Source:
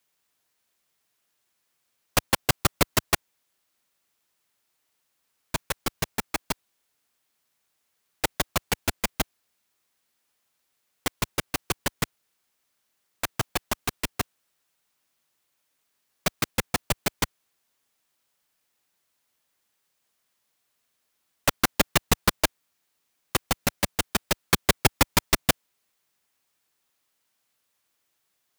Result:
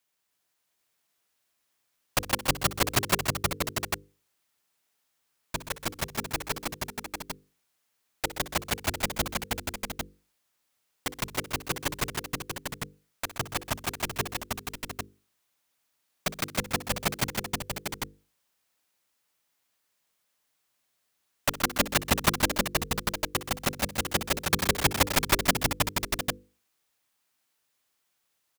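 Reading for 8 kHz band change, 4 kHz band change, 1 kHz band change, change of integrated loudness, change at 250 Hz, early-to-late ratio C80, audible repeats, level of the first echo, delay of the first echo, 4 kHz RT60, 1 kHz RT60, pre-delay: -1.0 dB, -1.0 dB, -1.0 dB, -2.5 dB, -1.5 dB, no reverb, 5, -15.5 dB, 61 ms, no reverb, no reverb, no reverb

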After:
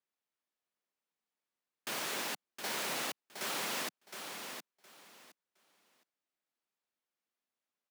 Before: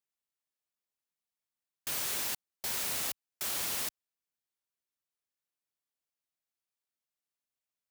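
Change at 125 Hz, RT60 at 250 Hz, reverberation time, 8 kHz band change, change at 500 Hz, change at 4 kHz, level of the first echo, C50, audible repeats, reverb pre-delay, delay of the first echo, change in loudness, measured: -3.0 dB, no reverb, no reverb, -5.0 dB, +5.0 dB, -0.5 dB, -7.0 dB, no reverb, 3, no reverb, 715 ms, -5.0 dB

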